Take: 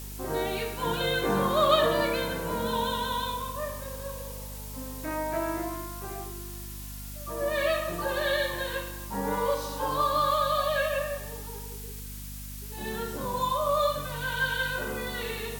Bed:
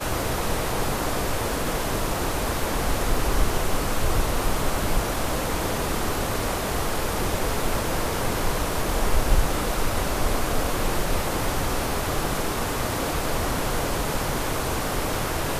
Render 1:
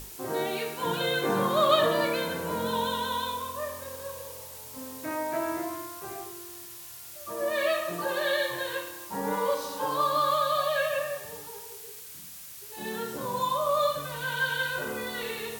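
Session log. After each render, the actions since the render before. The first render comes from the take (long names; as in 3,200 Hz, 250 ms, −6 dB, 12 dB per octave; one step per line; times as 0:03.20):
mains-hum notches 50/100/150/200/250 Hz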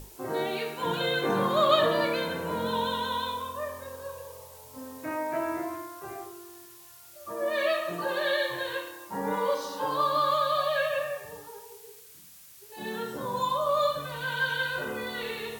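noise reduction from a noise print 7 dB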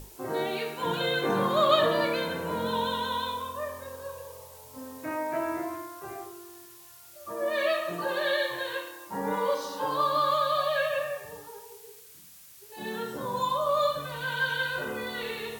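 0:08.46–0:09.07: low-shelf EQ 180 Hz −7.5 dB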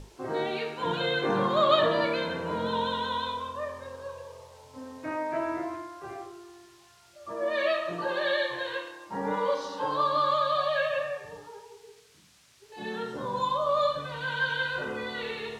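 low-pass filter 5,400 Hz 12 dB per octave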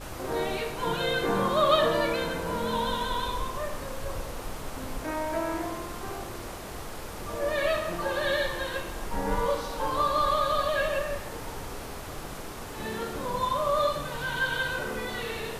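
mix in bed −13 dB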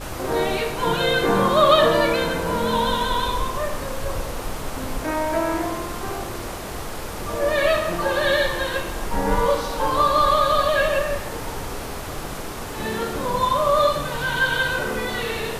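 level +7.5 dB
brickwall limiter −3 dBFS, peak gain reduction 1.5 dB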